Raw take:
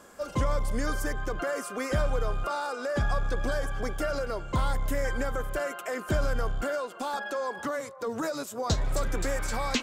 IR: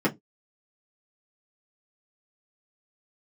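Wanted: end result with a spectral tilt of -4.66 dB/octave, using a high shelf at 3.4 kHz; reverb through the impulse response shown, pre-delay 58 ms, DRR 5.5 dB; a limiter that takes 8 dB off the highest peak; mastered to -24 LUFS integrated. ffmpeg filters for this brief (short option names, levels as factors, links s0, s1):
-filter_complex "[0:a]highshelf=f=3400:g=5,alimiter=limit=0.075:level=0:latency=1,asplit=2[s0][s1];[1:a]atrim=start_sample=2205,adelay=58[s2];[s1][s2]afir=irnorm=-1:irlink=0,volume=0.119[s3];[s0][s3]amix=inputs=2:normalize=0,volume=2.24"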